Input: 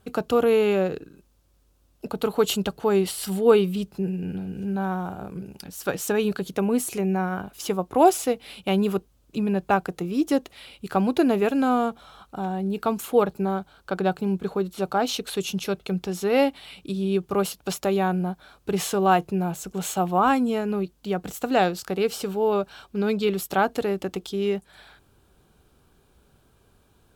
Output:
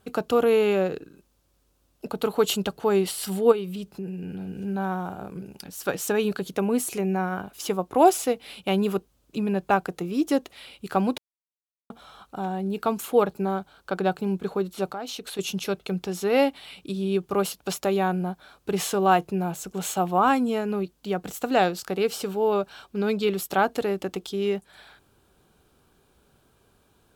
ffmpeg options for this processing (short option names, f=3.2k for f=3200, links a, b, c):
-filter_complex "[0:a]asplit=3[a][b][c];[a]afade=t=out:st=3.51:d=0.02[d];[b]acompressor=threshold=-30dB:ratio=2.5:attack=3.2:release=140:knee=1:detection=peak,afade=t=in:st=3.51:d=0.02,afade=t=out:st=4.39:d=0.02[e];[c]afade=t=in:st=4.39:d=0.02[f];[d][e][f]amix=inputs=3:normalize=0,asettb=1/sr,asplit=3[g][h][i];[g]atrim=end=14.894[j];[h]atrim=start=14.89:end=15.39,asetpts=PTS-STARTPTS,afade=t=in:d=0.004:c=qsin,afade=t=out:st=0.496:d=0.004:c=qsin,acompressor=threshold=-34dB:ratio=2.5:attack=3.2:release=140:knee=1:detection=peak[k];[i]atrim=start=15.386[l];[j][k]acrossfade=d=0.004:c1=hsin:c2=qsin[m];[m][l]acrossfade=d=0.004:c1=qsin:c2=hsin,asplit=3[n][o][p];[n]atrim=end=11.18,asetpts=PTS-STARTPTS,afade=t=out:st=11.176:d=0.004:c=hsin[q];[o]atrim=start=11.18:end=11.9,asetpts=PTS-STARTPTS,volume=0[r];[p]atrim=start=11.9,asetpts=PTS-STARTPTS,afade=t=in:d=0.004:c=hsin[s];[q][r][s]concat=n=3:v=0:a=1,lowshelf=f=120:g=-7"